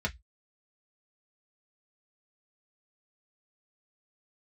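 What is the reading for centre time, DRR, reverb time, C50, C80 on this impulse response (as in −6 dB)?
7 ms, −1.5 dB, 0.10 s, 24.0 dB, 37.0 dB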